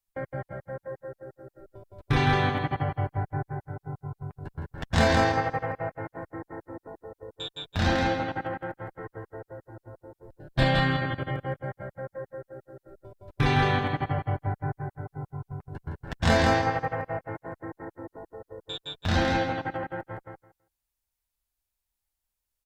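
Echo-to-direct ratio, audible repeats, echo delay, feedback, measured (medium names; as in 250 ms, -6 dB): -4.5 dB, 2, 164 ms, 16%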